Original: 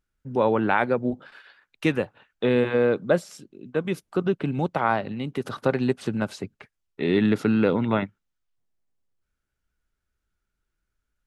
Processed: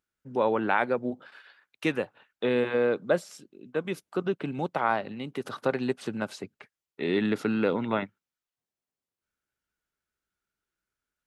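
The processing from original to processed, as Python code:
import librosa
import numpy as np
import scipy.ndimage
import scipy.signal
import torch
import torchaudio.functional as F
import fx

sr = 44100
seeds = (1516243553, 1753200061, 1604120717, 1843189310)

y = fx.highpass(x, sr, hz=270.0, slope=6)
y = y * 10.0 ** (-2.5 / 20.0)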